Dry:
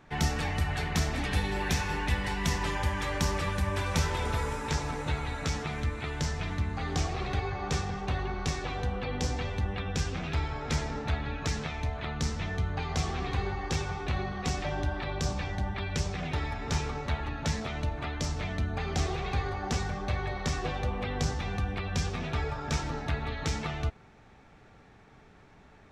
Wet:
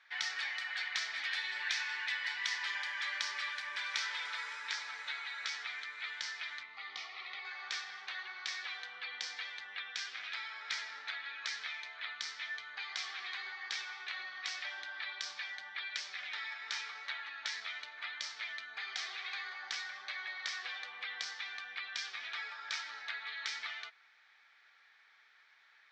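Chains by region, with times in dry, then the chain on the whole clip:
6.63–7.45 Butterworth band-stop 1600 Hz, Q 4.2 + air absorption 160 m
whole clip: Chebyshev band-pass 1700–4600 Hz, order 2; notch 2700 Hz, Q 12; gain +1 dB

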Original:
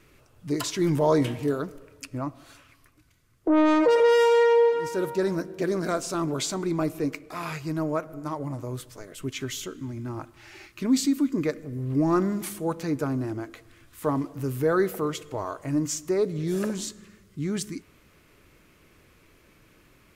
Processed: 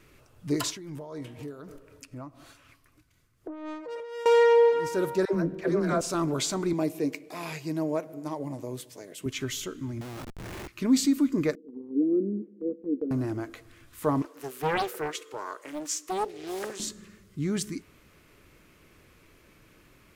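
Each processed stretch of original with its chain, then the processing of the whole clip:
0.7–4.26 compressor 4:1, threshold -37 dBFS + tremolo 4 Hz, depth 50%
5.25–6.01 tone controls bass +3 dB, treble -10 dB + dispersion lows, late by 93 ms, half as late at 430 Hz + mismatched tape noise reduction decoder only
6.73–9.26 HPF 180 Hz + bell 1300 Hz -12.5 dB 0.53 oct
10.01–10.68 delta modulation 64 kbps, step -47 dBFS + Chebyshev low-pass 3400 Hz, order 4 + Schmitt trigger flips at -46 dBFS
11.55–13.11 CVSD 16 kbps + elliptic band-pass 210–480 Hz + gate -39 dBFS, range -7 dB
14.22–16.8 HPF 380 Hz 24 dB/oct + bell 720 Hz -12 dB 0.52 oct + Doppler distortion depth 0.83 ms
whole clip: dry

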